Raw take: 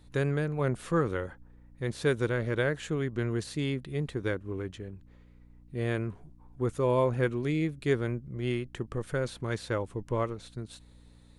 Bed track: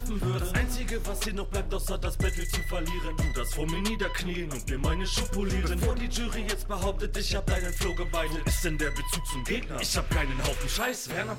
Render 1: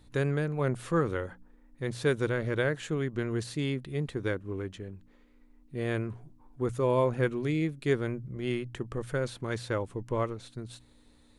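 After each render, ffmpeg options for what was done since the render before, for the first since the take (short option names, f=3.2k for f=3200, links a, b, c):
-af "bandreject=f=60:t=h:w=4,bandreject=f=120:t=h:w=4,bandreject=f=180:t=h:w=4"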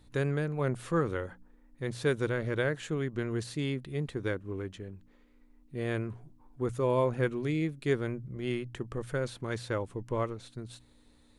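-af "volume=-1.5dB"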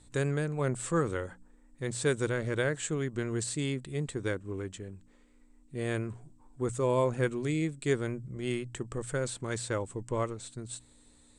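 -af "lowpass=f=8k:t=q:w=9.9"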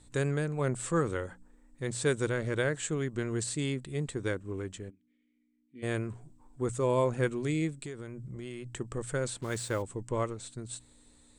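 -filter_complex "[0:a]asplit=3[a][b][c];[a]afade=t=out:st=4.89:d=0.02[d];[b]asplit=3[e][f][g];[e]bandpass=f=270:t=q:w=8,volume=0dB[h];[f]bandpass=f=2.29k:t=q:w=8,volume=-6dB[i];[g]bandpass=f=3.01k:t=q:w=8,volume=-9dB[j];[h][i][j]amix=inputs=3:normalize=0,afade=t=in:st=4.89:d=0.02,afade=t=out:st=5.82:d=0.02[k];[c]afade=t=in:st=5.82:d=0.02[l];[d][k][l]amix=inputs=3:normalize=0,asettb=1/sr,asplit=3[m][n][o];[m]atrim=end=7.784[p];[n]atrim=start=7.78:end=8.69,asetpts=PTS-STARTPTS,afade=t=in:d=0.004:c=qsin,afade=t=out:st=0.906:d=0.004:c=qsin,acompressor=threshold=-36dB:ratio=16:attack=3.2:release=140:knee=1:detection=peak[q];[o]atrim=start=8.686[r];[p][q]acrossfade=d=0.004:c1=hsin:c2=qsin[s];[s][r]acrossfade=d=0.004:c1=qsin:c2=hsin,asplit=3[t][u][v];[t]afade=t=out:st=9.4:d=0.02[w];[u]acrusher=bits=7:mix=0:aa=0.5,afade=t=in:st=9.4:d=0.02,afade=t=out:st=9.81:d=0.02[x];[v]afade=t=in:st=9.81:d=0.02[y];[w][x][y]amix=inputs=3:normalize=0"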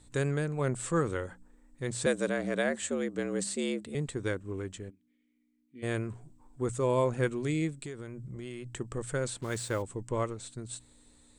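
-filter_complex "[0:a]asettb=1/sr,asplit=3[a][b][c];[a]atrim=end=2.064[d];[b]atrim=start=2.06:end=3.95,asetpts=PTS-STARTPTS,afade=t=in:d=0.004:c=qsin,afade=t=out:st=1.886:d=0.004:c=qsin,afreqshift=80[e];[c]atrim=start=3.946[f];[d][e]acrossfade=d=0.004:c1=hsin:c2=qsin[g];[g][f]acrossfade=d=0.004:c1=qsin:c2=hsin"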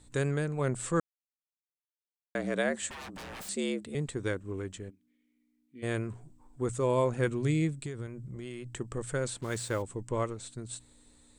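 -filter_complex "[0:a]asettb=1/sr,asplit=3[a][b][c];[a]atrim=end=2.894[d];[b]atrim=start=2.89:end=3.49,asetpts=PTS-STARTPTS,afade=t=in:d=0.004:c=qsin,afade=t=out:st=0.596:d=0.004:c=qsin,aeval=exprs='0.0119*(abs(mod(val(0)/0.0119+3,4)-2)-1)':c=same[e];[c]atrim=start=3.486[f];[d][e]acrossfade=d=0.004:c1=hsin:c2=qsin[g];[g][f]acrossfade=d=0.004:c1=qsin:c2=hsin,asettb=1/sr,asplit=3[h][i][j];[h]atrim=end=7.274[k];[i]atrim=start=7.27:end=8.07,asetpts=PTS-STARTPTS,afade=t=in:d=0.004:c=qsin,afade=t=out:st=0.796:d=0.004:c=qsin,equalizer=f=110:t=o:w=1.1:g=8[l];[j]atrim=start=8.066[m];[k][l]acrossfade=d=0.004:c1=hsin:c2=qsin[n];[n][m]acrossfade=d=0.004:c1=qsin:c2=hsin,asplit=3[o][p][q];[o]atrim=end=1,asetpts=PTS-STARTPTS,afade=t=out:st=0.996:d=0.004:c=hsin[r];[p]atrim=start=1:end=2.35,asetpts=PTS-STARTPTS,volume=0[s];[q]atrim=start=2.35,asetpts=PTS-STARTPTS,afade=t=in:d=0.004:c=hsin[t];[r][s][t]concat=n=3:v=0:a=1"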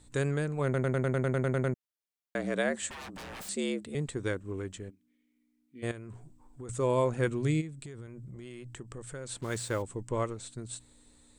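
-filter_complex "[0:a]asettb=1/sr,asplit=3[a][b][c];[a]atrim=end=5.914[d];[b]atrim=start=5.91:end=6.69,asetpts=PTS-STARTPTS,afade=t=in:d=0.004:c=qsin,afade=t=out:st=0.776:d=0.004:c=qsin,acompressor=threshold=-39dB:ratio=10:attack=3.2:release=140:knee=1:detection=peak[e];[c]atrim=start=6.686[f];[d][e]acrossfade=d=0.004:c1=hsin:c2=qsin[g];[g][f]acrossfade=d=0.004:c1=qsin:c2=hsin,asplit=3[h][i][j];[h]afade=t=out:st=7.6:d=0.02[k];[i]acompressor=threshold=-42dB:ratio=2.5:attack=3.2:release=140:knee=1:detection=peak,afade=t=in:st=7.6:d=0.02,afade=t=out:st=9.29:d=0.02[l];[j]afade=t=in:st=9.29:d=0.02[m];[k][l][m]amix=inputs=3:normalize=0,asplit=12[n][o][p][q][r][s][t][u][v][w][x][y];[n]atrim=end=0.742[z];[o]atrim=start=0.638:end=0.742[aa];[p]atrim=start=0.638:end=0.742[ab];[q]atrim=start=0.638:end=0.742[ac];[r]atrim=start=0.638:end=0.742[ad];[s]atrim=start=0.638:end=0.742[ae];[t]atrim=start=0.638:end=0.742[af];[u]atrim=start=0.638:end=0.742[ag];[v]atrim=start=0.638:end=0.742[ah];[w]atrim=start=0.638:end=0.742[ai];[x]atrim=start=0.638:end=0.742[aj];[y]atrim=start=1.738[ak];[z][aa]acrossfade=d=0.004:c1=hsin:c2=hsin[al];[al][ab]acrossfade=d=0.004:c1=hsin:c2=hsin[am];[am][ac]acrossfade=d=0.004:c1=hsin:c2=hsin[an];[an][ad]acrossfade=d=0.004:c1=hsin:c2=hsin[ao];[ao][ae]acrossfade=d=0.004:c1=hsin:c2=hsin[ap];[ap][af]acrossfade=d=0.004:c1=hsin:c2=hsin[aq];[aq][ag]acrossfade=d=0.004:c1=hsin:c2=hsin[ar];[ar][ah]acrossfade=d=0.004:c1=hsin:c2=hsin[as];[as][ai]acrossfade=d=0.004:c1=hsin:c2=hsin[at];[at][aj]acrossfade=d=0.004:c1=hsin:c2=hsin[au];[au][ak]acrossfade=d=0.004:c1=hsin:c2=hsin"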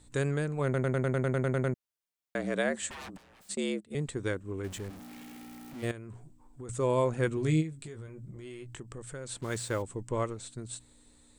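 -filter_complex "[0:a]asplit=3[a][b][c];[a]afade=t=out:st=3.16:d=0.02[d];[b]agate=range=-16dB:threshold=-39dB:ratio=16:release=100:detection=peak,afade=t=in:st=3.16:d=0.02,afade=t=out:st=3.9:d=0.02[e];[c]afade=t=in:st=3.9:d=0.02[f];[d][e][f]amix=inputs=3:normalize=0,asettb=1/sr,asplit=3[g][h][i];[g]atrim=end=4.644[j];[h]atrim=start=4.64:end=5.91,asetpts=PTS-STARTPTS,afade=t=in:d=0.004:c=qsin,afade=t=out:st=1.266:d=0.004:c=qsin,aeval=exprs='val(0)+0.5*0.00891*sgn(val(0))':c=same[k];[i]atrim=start=5.906[l];[j][k]acrossfade=d=0.004:c1=hsin:c2=qsin[m];[m][l]acrossfade=d=0.004:c1=qsin:c2=hsin,asettb=1/sr,asplit=3[n][o][p];[n]atrim=end=7.354[q];[o]atrim=start=7.35:end=8.8,asetpts=PTS-STARTPTS,afade=t=in:d=0.004:c=qsin,afade=t=out:st=1.446:d=0.004:c=qsin,asplit=2[r][s];[s]adelay=19,volume=-6.5dB[t];[r][t]amix=inputs=2:normalize=0,atrim=end_sample=63945[u];[p]atrim=start=8.796[v];[q][u]acrossfade=d=0.004:c1=hsin:c2=qsin[w];[w][v]acrossfade=d=0.004:c1=qsin:c2=hsin"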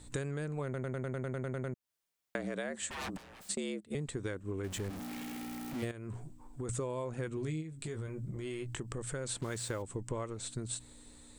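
-filter_complex "[0:a]asplit=2[a][b];[b]alimiter=limit=-24dB:level=0:latency=1,volume=-2dB[c];[a][c]amix=inputs=2:normalize=0,acompressor=threshold=-34dB:ratio=10"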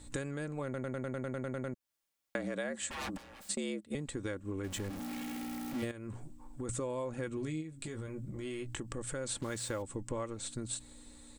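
-af "aecho=1:1:3.6:0.37"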